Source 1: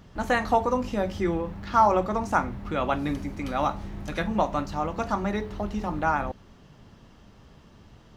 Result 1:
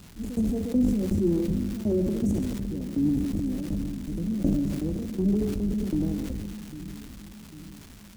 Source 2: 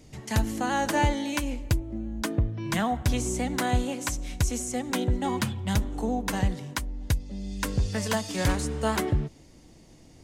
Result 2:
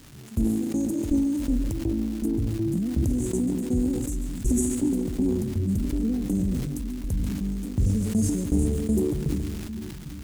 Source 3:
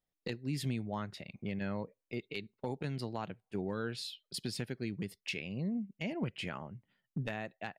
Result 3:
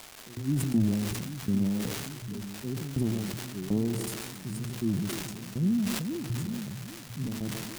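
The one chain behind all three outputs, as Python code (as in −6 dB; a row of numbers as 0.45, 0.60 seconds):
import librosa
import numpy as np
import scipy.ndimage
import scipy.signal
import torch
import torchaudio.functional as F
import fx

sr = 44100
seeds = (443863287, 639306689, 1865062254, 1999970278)

y = scipy.signal.sosfilt(scipy.signal.cheby2(4, 70, [1100.0, 2800.0], 'bandstop', fs=sr, output='sos'), x)
y = fx.hum_notches(y, sr, base_hz=60, count=2)
y = fx.hpss(y, sr, part='percussive', gain_db=-12)
y = fx.dynamic_eq(y, sr, hz=260.0, q=0.92, threshold_db=-42.0, ratio=4.0, max_db=4)
y = fx.transient(y, sr, attack_db=-3, sustain_db=9)
y = fx.tremolo_shape(y, sr, shape='saw_down', hz=2.7, depth_pct=95)
y = fx.dmg_crackle(y, sr, seeds[0], per_s=590.0, level_db=-45.0)
y = fx.echo_split(y, sr, split_hz=300.0, low_ms=798, high_ms=139, feedback_pct=52, wet_db=-11.5)
y = fx.sustainer(y, sr, db_per_s=29.0)
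y = y * 10.0 ** (-12 / 20.0) / np.max(np.abs(y))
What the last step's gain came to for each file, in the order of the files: +6.0, +6.5, +11.5 decibels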